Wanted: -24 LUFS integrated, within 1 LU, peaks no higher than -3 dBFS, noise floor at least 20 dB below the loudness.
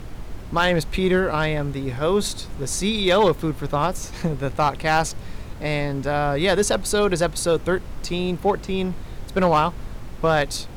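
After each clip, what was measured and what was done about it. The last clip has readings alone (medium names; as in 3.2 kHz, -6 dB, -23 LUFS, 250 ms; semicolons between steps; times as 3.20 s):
clipped samples 0.4%; clipping level -10.5 dBFS; noise floor -36 dBFS; noise floor target -43 dBFS; loudness -22.5 LUFS; peak level -10.5 dBFS; loudness target -24.0 LUFS
-> clip repair -10.5 dBFS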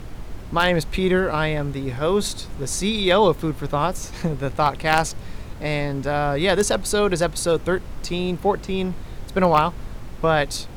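clipped samples 0.0%; noise floor -36 dBFS; noise floor target -42 dBFS
-> noise print and reduce 6 dB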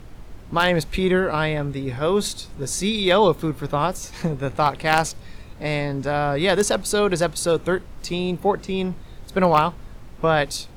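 noise floor -41 dBFS; noise floor target -42 dBFS
-> noise print and reduce 6 dB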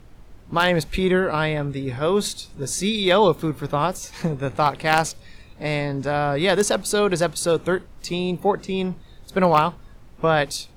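noise floor -46 dBFS; loudness -22.0 LUFS; peak level -1.5 dBFS; loudness target -24.0 LUFS
-> trim -2 dB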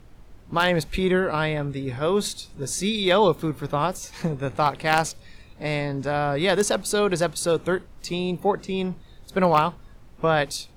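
loudness -24.0 LUFS; peak level -3.5 dBFS; noise floor -48 dBFS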